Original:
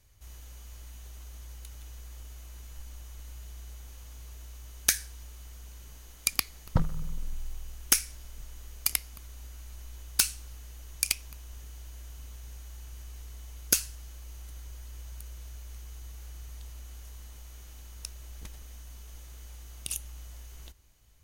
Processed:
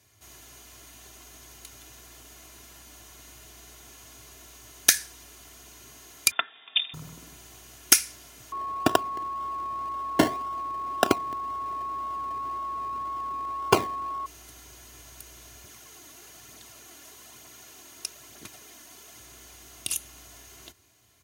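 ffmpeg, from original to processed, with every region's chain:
-filter_complex "[0:a]asettb=1/sr,asplit=3[s0][s1][s2];[s0]atrim=end=6.314[s3];[s1]atrim=start=6.31:end=6.94,asetpts=PTS-STARTPTS,afade=t=in:d=0.004:c=qsin,afade=t=out:st=0.626:d=0.004:c=qsin,highpass=f=240:t=q:w=1.6,aecho=1:1:4.5:0.44,atrim=end_sample=27783,lowpass=f=3200:t=q:w=0.5098,lowpass=f=3200:t=q:w=0.6013,lowpass=f=3200:t=q:w=0.9,lowpass=f=3200:t=q:w=2.563,afreqshift=-3800[s4];[s2]atrim=start=6.936[s5];[s3][s4]acrossfade=d=0.004:c1=hsin:c2=qsin[s6];[s6][s5]acrossfade=d=0.004:c1=qsin:c2=hsin,asettb=1/sr,asplit=3[s7][s8][s9];[s7]atrim=end=8.524[s10];[s8]atrim=start=8.52:end=14.26,asetpts=PTS-STARTPTS,afade=t=in:d=0.004:c=qsin,afade=t=out:st=5.736:d=0.004:c=qsin,acrusher=samples=28:mix=1:aa=0.000001:lfo=1:lforange=16.8:lforate=1.9,aeval=exprs='val(0)+0.0126*sin(2*PI*1100*n/s)':c=same[s11];[s9]atrim=start=14.256[s12];[s10][s11]acrossfade=d=0.004:c1=hsin:c2=qsin[s13];[s13][s12]acrossfade=d=0.004:c1=qsin:c2=hsin,asettb=1/sr,asplit=3[s14][s15][s16];[s14]atrim=end=15.644[s17];[s15]atrim=start=15.64:end=19.2,asetpts=PTS-STARTPTS,afade=t=in:d=0.004:c=qsin,afade=t=out:st=3.556:d=0.004:c=qsin,highpass=130,aphaser=in_gain=1:out_gain=1:delay=3.6:decay=0.36:speed=1.1:type=triangular[s18];[s16]atrim=start=19.196[s19];[s17][s18]acrossfade=d=0.004:c1=hsin:c2=qsin[s20];[s20][s19]acrossfade=d=0.004:c1=qsin:c2=hsin,highpass=f=110:w=0.5412,highpass=f=110:w=1.3066,highshelf=f=10000:g=-3.5,aecho=1:1:2.9:0.55,volume=1.88"

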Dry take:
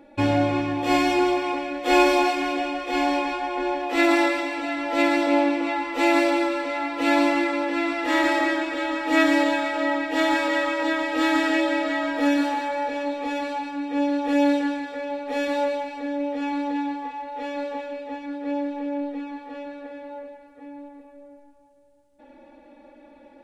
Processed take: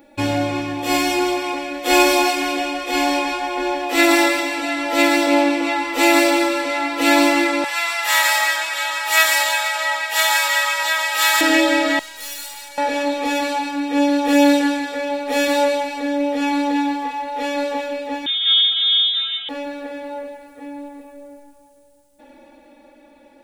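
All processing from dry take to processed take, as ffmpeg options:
-filter_complex "[0:a]asettb=1/sr,asplit=3[s0][s1][s2];[s0]atrim=end=7.644[s3];[s1]atrim=start=7.64:end=11.41,asetpts=PTS-STARTPTS,afade=t=in:d=0.004:c=qsin,afade=t=out:st=3.766:d=0.004:c=qsin,highpass=f=780:w=0.5412,highpass=f=780:w=1.3066,highshelf=f=7400:g=9[s4];[s2]atrim=start=11.406[s5];[s3][s4]acrossfade=d=0.004:c1=hsin:c2=qsin[s6];[s6][s5]acrossfade=d=0.004:c1=qsin:c2=hsin,asettb=1/sr,asplit=3[s7][s8][s9];[s7]atrim=end=11.994[s10];[s8]atrim=start=11.99:end=12.78,asetpts=PTS-STARTPTS,afade=t=in:d=0.004:c=qsin,afade=t=out:st=0.786:d=0.004:c=qsin,aderivative,aecho=1:1:2.1:0.53,atrim=end_sample=34839,aeval=exprs='(tanh(89.1*val(0)+0.75)-tanh(0.75))/89.1':c=same[s11];[s9]atrim=start=12.776[s12];[s10][s11]acrossfade=d=0.004:c1=hsin:c2=qsin[s13];[s13][s12]acrossfade=d=0.004:c1=qsin:c2=hsin,asettb=1/sr,asplit=3[s14][s15][s16];[s14]atrim=end=18.264[s17];[s15]atrim=start=18.26:end=19.49,asetpts=PTS-STARTPTS,afade=t=in:d=0.004:c=qsin,afade=t=out:st=1.226:d=0.004:c=qsin,aecho=1:1:1.9:0.32,atrim=end_sample=54243,lowpass=f=3300:t=q:w=0.5098,lowpass=f=3300:t=q:w=0.6013,lowpass=f=3300:t=q:w=0.9,lowpass=f=3300:t=q:w=2.563,afreqshift=-3900[s18];[s16]atrim=start=19.486[s19];[s17][s18]acrossfade=d=0.004:c1=hsin:c2=qsin[s20];[s20][s19]acrossfade=d=0.004:c1=qsin:c2=hsin,aemphasis=mode=production:type=75kf,dynaudnorm=f=200:g=17:m=2.24"

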